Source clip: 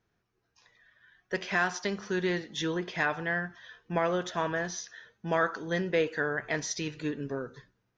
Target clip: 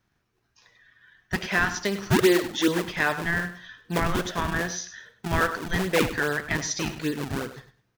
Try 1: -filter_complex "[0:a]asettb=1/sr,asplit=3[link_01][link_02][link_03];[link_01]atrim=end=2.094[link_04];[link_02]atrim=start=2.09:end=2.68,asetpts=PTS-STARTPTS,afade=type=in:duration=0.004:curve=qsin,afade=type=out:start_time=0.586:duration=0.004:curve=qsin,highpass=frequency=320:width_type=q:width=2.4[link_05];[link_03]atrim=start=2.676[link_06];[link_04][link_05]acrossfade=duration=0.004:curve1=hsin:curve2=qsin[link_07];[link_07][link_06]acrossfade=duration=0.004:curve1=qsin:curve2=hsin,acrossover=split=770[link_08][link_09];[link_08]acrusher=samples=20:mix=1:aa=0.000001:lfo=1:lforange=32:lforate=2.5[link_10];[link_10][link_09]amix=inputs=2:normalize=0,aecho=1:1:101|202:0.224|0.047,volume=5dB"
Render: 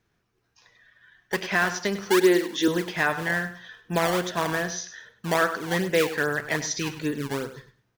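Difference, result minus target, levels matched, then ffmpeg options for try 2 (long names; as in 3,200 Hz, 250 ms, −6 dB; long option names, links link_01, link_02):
sample-and-hold swept by an LFO: distortion −9 dB
-filter_complex "[0:a]asettb=1/sr,asplit=3[link_01][link_02][link_03];[link_01]atrim=end=2.094[link_04];[link_02]atrim=start=2.09:end=2.68,asetpts=PTS-STARTPTS,afade=type=in:duration=0.004:curve=qsin,afade=type=out:start_time=0.586:duration=0.004:curve=qsin,highpass=frequency=320:width_type=q:width=2.4[link_05];[link_03]atrim=start=2.676[link_06];[link_04][link_05]acrossfade=duration=0.004:curve1=hsin:curve2=qsin[link_07];[link_07][link_06]acrossfade=duration=0.004:curve1=qsin:curve2=hsin,acrossover=split=770[link_08][link_09];[link_08]acrusher=samples=49:mix=1:aa=0.000001:lfo=1:lforange=78.4:lforate=2.5[link_10];[link_10][link_09]amix=inputs=2:normalize=0,aecho=1:1:101|202:0.224|0.047,volume=5dB"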